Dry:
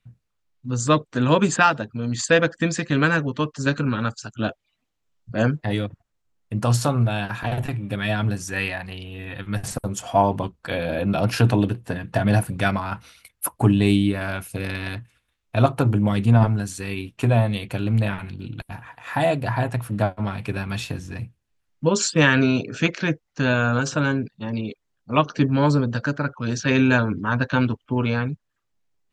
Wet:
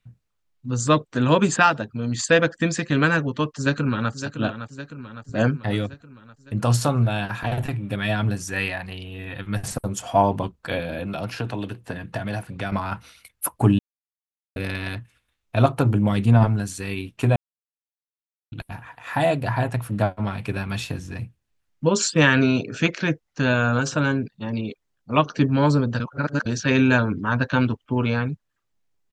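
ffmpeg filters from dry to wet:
-filter_complex "[0:a]asplit=2[a][b];[b]afade=t=in:st=3.56:d=0.01,afade=t=out:st=4.11:d=0.01,aecho=0:1:560|1120|1680|2240|2800|3360|3920:0.316228|0.189737|0.113842|0.0683052|0.0409831|0.0245899|0.0147539[c];[a][c]amix=inputs=2:normalize=0,asettb=1/sr,asplit=3[d][e][f];[d]atrim=end=10.794[g];[e]atrim=start=10.79:end=12.72,asetpts=PTS-STARTPTS,afade=t=in:d=0.004:c=qsin,afade=t=out:st=1.926:d=0.004:c=qsin,acrossover=split=340|1000|6000[h][i][j][k];[h]acompressor=threshold=-32dB:ratio=3[l];[i]acompressor=threshold=-35dB:ratio=3[m];[j]acompressor=threshold=-36dB:ratio=3[n];[k]acompressor=threshold=-57dB:ratio=3[o];[l][m][n][o]amix=inputs=4:normalize=0[p];[f]atrim=start=12.716[q];[g][p]acrossfade=d=0.004:c1=hsin:c2=qsin[r];[r][q]acrossfade=d=0.004:c1=qsin:c2=hsin,asplit=7[s][t][u][v][w][x][y];[s]atrim=end=13.79,asetpts=PTS-STARTPTS,afade=t=out:st=13.786:d=0.004:c=hsin[z];[t]atrim=start=13.79:end=14.56,asetpts=PTS-STARTPTS,volume=0[aa];[u]atrim=start=14.56:end=17.36,asetpts=PTS-STARTPTS,afade=t=in:d=0.004:c=hsin,afade=t=out:st=2.796:d=0.004:c=hsin[ab];[v]atrim=start=17.36:end=18.52,asetpts=PTS-STARTPTS,volume=0[ac];[w]atrim=start=18.52:end=26.002,asetpts=PTS-STARTPTS,afade=t=in:d=0.004:c=hsin[ad];[x]atrim=start=25.998:end=26.462,asetpts=PTS-STARTPTS,areverse[ae];[y]atrim=start=26.458[af];[z][aa][ab][ac][ad]concat=n=5:v=0:a=1[ag];[ag][ae]acrossfade=d=0.004:c1=hsin:c2=hsin[ah];[ah][af]acrossfade=d=0.004:c1=hsin:c2=hsin"

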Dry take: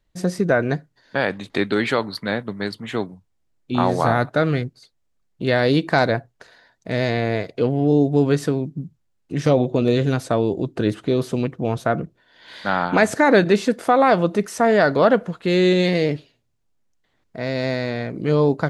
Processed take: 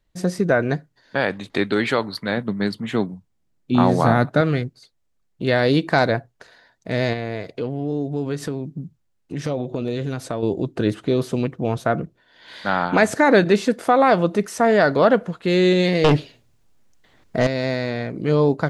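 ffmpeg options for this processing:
-filter_complex "[0:a]asettb=1/sr,asplit=3[a][b][c];[a]atrim=end=2.374[d];[b]atrim=start=2.37:end=4.41,asetpts=PTS-STARTPTS,afade=t=in:d=0.004:c=qsin,afade=t=out:st=2.036:d=0.004:c=qsin,equalizer=f=190:w=1.1:g=7[e];[c]atrim=start=4.406[f];[d][e]acrossfade=d=0.004:c1=hsin:c2=qsin[g];[g][f]acrossfade=d=0.004:c1=qsin:c2=hsin,asettb=1/sr,asplit=3[h][i][j];[h]atrim=end=7.134[k];[i]atrim=start=7.13:end=10.43,asetpts=PTS-STARTPTS,afade=t=in:d=0.004:c=qsin,afade=t=out:st=3.296:d=0.004:c=qsin,acompressor=threshold=-26dB:ratio=2:attack=3.2:release=140:knee=1:detection=peak[l];[j]atrim=start=10.426[m];[k][l]acrossfade=d=0.004:c1=hsin:c2=qsin[n];[n][m]acrossfade=d=0.004:c1=qsin:c2=hsin,asettb=1/sr,asplit=3[o][p][q];[o]atrim=end=16.044[r];[p]atrim=start=16.04:end=17.47,asetpts=PTS-STARTPTS,afade=t=in:d=0.004:c=qsin,afade=t=out:st=1.426:d=0.004:c=qsin,aeval=exprs='0.355*sin(PI/2*2.51*val(0)/0.355)':c=same[s];[q]atrim=start=17.466[t];[r][s]acrossfade=d=0.004:c1=hsin:c2=qsin[u];[u][t]acrossfade=d=0.004:c1=qsin:c2=hsin"

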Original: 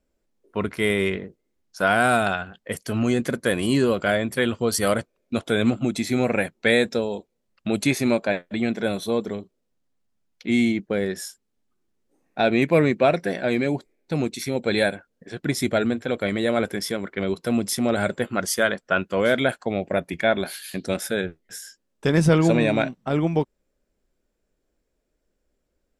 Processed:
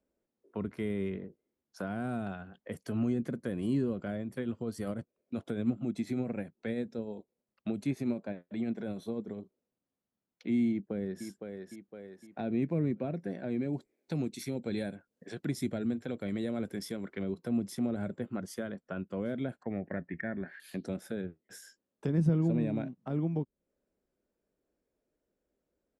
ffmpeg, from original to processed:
-filter_complex "[0:a]asplit=3[a][b][c];[a]afade=t=out:st=4.17:d=0.02[d];[b]tremolo=f=10:d=0.43,afade=t=in:st=4.17:d=0.02,afade=t=out:st=9.39:d=0.02[e];[c]afade=t=in:st=9.39:d=0.02[f];[d][e][f]amix=inputs=3:normalize=0,asplit=2[g][h];[h]afade=t=in:st=10.69:d=0.01,afade=t=out:st=11.24:d=0.01,aecho=0:1:510|1020|1530|2040|2550:0.298538|0.134342|0.060454|0.0272043|0.0122419[i];[g][i]amix=inputs=2:normalize=0,asettb=1/sr,asplit=3[j][k][l];[j]atrim=end=13.734[m];[k]atrim=start=13.73:end=17.23,asetpts=PTS-STARTPTS,afade=t=in:d=0.004:c=qsin,afade=t=out:st=3.496:d=0.004:c=qsin,highshelf=f=2.7k:g=10[n];[l]atrim=start=17.226[o];[m][n]acrossfade=d=0.004:c1=hsin:c2=qsin[p];[p][o]acrossfade=d=0.004:c1=qsin:c2=hsin,asettb=1/sr,asplit=3[q][r][s];[q]atrim=end=19.634[t];[r]atrim=start=19.63:end=20.6,asetpts=PTS-STARTPTS,afade=t=in:d=0.004:c=qsin,afade=t=out:st=0.966:d=0.004:c=qsin,lowpass=f=1.8k:t=q:w=12[u];[s]atrim=start=20.596[v];[t][u]acrossfade=d=0.004:c1=hsin:c2=qsin[w];[w][v]acrossfade=d=0.004:c1=qsin:c2=hsin,highpass=f=180:p=1,tiltshelf=f=1.5k:g=5.5,acrossover=split=280[x][y];[y]acompressor=threshold=-33dB:ratio=5[z];[x][z]amix=inputs=2:normalize=0,volume=-8.5dB"

